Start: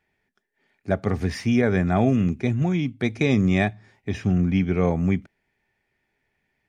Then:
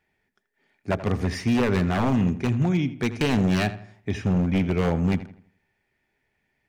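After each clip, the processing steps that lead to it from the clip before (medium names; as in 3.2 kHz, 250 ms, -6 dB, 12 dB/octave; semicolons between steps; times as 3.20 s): wavefolder -15 dBFS; filtered feedback delay 82 ms, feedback 38%, low-pass 3 kHz, level -13.5 dB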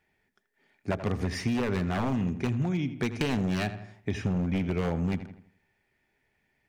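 compression, threshold -25 dBFS, peak gain reduction 7.5 dB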